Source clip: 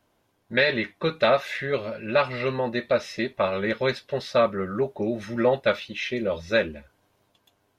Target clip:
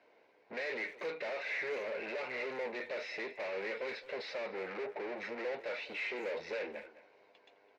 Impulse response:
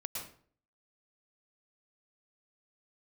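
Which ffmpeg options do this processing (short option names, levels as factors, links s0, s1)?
-filter_complex "[0:a]asplit=2[s0][s1];[s1]acompressor=threshold=0.0316:ratio=6,volume=1.06[s2];[s0][s2]amix=inputs=2:normalize=0,alimiter=limit=0.316:level=0:latency=1:release=384,aeval=exprs='(tanh(79.4*val(0)+0.55)-tanh(0.55))/79.4':c=same,highpass=430,equalizer=f=460:t=q:w=4:g=9,equalizer=f=1200:t=q:w=4:g=-7,equalizer=f=2200:t=q:w=4:g=8,equalizer=f=3300:t=q:w=4:g=-10,lowpass=f=4200:w=0.5412,lowpass=f=4200:w=1.3066,asplit=2[s3][s4];[s4]adelay=210,highpass=300,lowpass=3400,asoftclip=type=hard:threshold=0.0133,volume=0.2[s5];[s3][s5]amix=inputs=2:normalize=0"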